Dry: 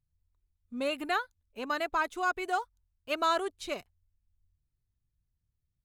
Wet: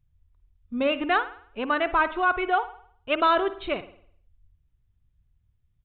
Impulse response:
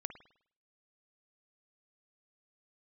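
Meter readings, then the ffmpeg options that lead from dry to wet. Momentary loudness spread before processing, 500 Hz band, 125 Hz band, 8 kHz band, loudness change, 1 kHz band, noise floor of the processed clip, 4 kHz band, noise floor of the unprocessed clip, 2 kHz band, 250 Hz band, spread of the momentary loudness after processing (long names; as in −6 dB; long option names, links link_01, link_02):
13 LU, +7.5 dB, can't be measured, below −30 dB, +7.0 dB, +7.5 dB, −69 dBFS, +5.0 dB, −83 dBFS, +7.5 dB, +9.0 dB, 13 LU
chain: -filter_complex "[0:a]asplit=2[link_01][link_02];[1:a]atrim=start_sample=2205,lowshelf=frequency=160:gain=10.5[link_03];[link_02][link_03]afir=irnorm=-1:irlink=0,volume=4.5dB[link_04];[link_01][link_04]amix=inputs=2:normalize=0,aresample=8000,aresample=44100"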